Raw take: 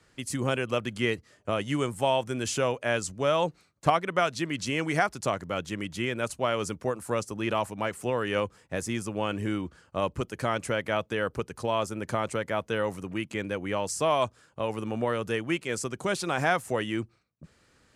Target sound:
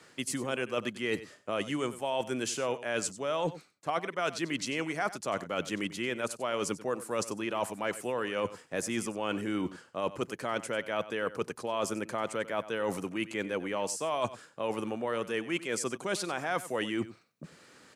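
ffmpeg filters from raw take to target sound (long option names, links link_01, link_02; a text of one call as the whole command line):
ffmpeg -i in.wav -af "highpass=200,areverse,acompressor=threshold=-37dB:ratio=6,areverse,aecho=1:1:94:0.168,volume=7.5dB" out.wav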